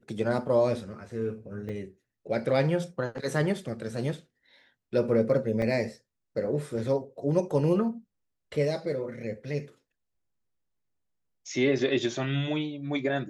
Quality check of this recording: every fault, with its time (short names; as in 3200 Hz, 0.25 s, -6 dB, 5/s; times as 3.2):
1.69 gap 4.1 ms
5.62 gap 2.3 ms